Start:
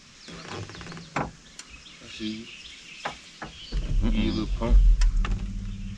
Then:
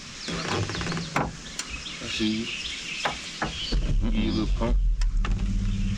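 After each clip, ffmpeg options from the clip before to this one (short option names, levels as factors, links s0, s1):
-af "acompressor=threshold=0.0282:ratio=6,aeval=exprs='0.0944*(cos(1*acos(clip(val(0)/0.0944,-1,1)))-cos(1*PI/2))+0.0075*(cos(5*acos(clip(val(0)/0.0944,-1,1)))-cos(5*PI/2))':c=same,volume=2.51"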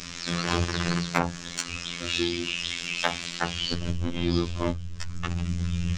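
-af "afftfilt=real='hypot(re,im)*cos(PI*b)':imag='0':win_size=2048:overlap=0.75,volume=1.68"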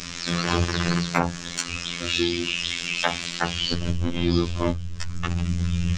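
-af "acontrast=21,volume=0.891"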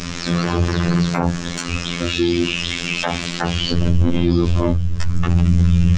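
-af "tiltshelf=f=1300:g=5,alimiter=level_in=3.35:limit=0.891:release=50:level=0:latency=1,volume=0.708"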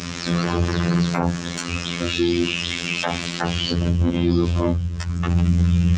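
-af "highpass=68,volume=0.794"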